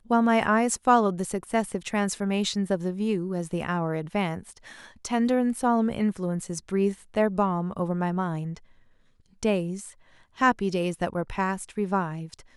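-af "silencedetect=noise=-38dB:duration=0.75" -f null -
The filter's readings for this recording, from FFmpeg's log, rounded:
silence_start: 8.57
silence_end: 9.43 | silence_duration: 0.86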